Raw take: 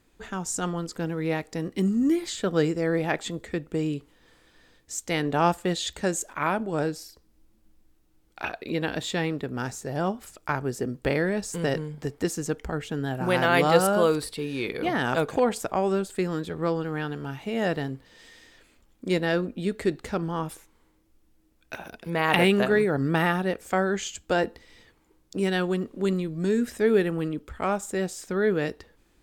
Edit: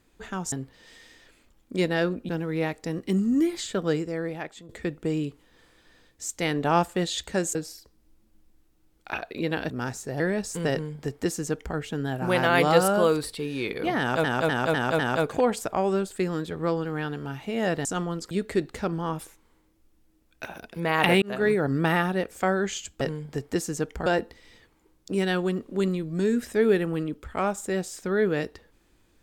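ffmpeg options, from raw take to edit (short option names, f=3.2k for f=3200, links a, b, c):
-filter_complex "[0:a]asplit=16[a][b][c][d][e][f][g][h][i][j][k][l][m][n][o][p];[a]atrim=end=0.522[q];[b]atrim=start=17.838:end=19.612[r];[c]atrim=start=0.978:end=3.38,asetpts=PTS-STARTPTS,afade=t=out:st=1.302:d=1.1:silence=0.158489[s];[d]atrim=start=3.38:end=6.242,asetpts=PTS-STARTPTS,afade=t=in:d=0.004:c=hsin:silence=0.158489[t];[e]atrim=start=6.858:end=9.012[u];[f]atrim=start=9.478:end=9.982[v];[g]atrim=start=11.188:end=15.232[w];[h]atrim=start=14.978:end=15.232[x];[i]atrim=start=14.978:end=15.232[y];[j]atrim=start=14.978:end=15.232[z];[k]atrim=start=14.978:end=17.842[aa];[l]atrim=start=0.518:end=0.982[ab];[m]atrim=start=19.608:end=22.52,asetpts=PTS-STARTPTS,afade=t=out:st=2.908:d=0.004:c=hsin[ac];[n]atrim=start=22.52:end=24.312,asetpts=PTS-STARTPTS,afade=t=in:d=0.28[ad];[o]atrim=start=11.698:end=12.752[ae];[p]atrim=start=24.308[af];[q][r]acrossfade=d=0.004:c1=hsin:c2=hsin[ag];[s][t]concat=n=2:v=0:a=1[ah];[ag][ah]acrossfade=d=0.004:c1=hsin:c2=hsin[ai];[ai][u]acrossfade=d=0.004:c1=hsin:c2=hsin[aj];[aj][v]acrossfade=d=0.004:c1=hsin:c2=hsin[ak];[ak][w]acrossfade=d=0.004:c1=hsin:c2=hsin[al];[al][x]acrossfade=d=0.004:c1=hsin:c2=hsin[am];[am][y]acrossfade=d=0.004:c1=hsin:c2=hsin[an];[an][z]acrossfade=d=0.004:c1=hsin:c2=hsin[ao];[ao][aa]acrossfade=d=0.004:c1=hsin:c2=hsin[ap];[ap][ab]acrossfade=d=0.004:c1=hsin:c2=hsin[aq];[ac][ad]concat=n=2:v=0:a=1[ar];[aq][ar]acrossfade=d=0.004:c1=hsin:c2=hsin[as];[as][ae]acrossfade=d=0.004:c1=hsin:c2=hsin[at];[at][af]acrossfade=d=0.004:c1=hsin:c2=hsin"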